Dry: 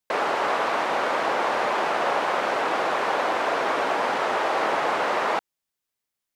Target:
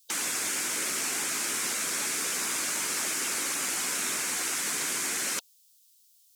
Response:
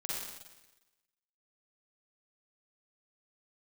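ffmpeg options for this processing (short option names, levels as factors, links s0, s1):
-af "aexciter=amount=8.9:drive=9.3:freq=2900,afftfilt=real='re*lt(hypot(re,im),0.141)':imag='im*lt(hypot(re,im),0.141)':win_size=1024:overlap=0.75,volume=0.562"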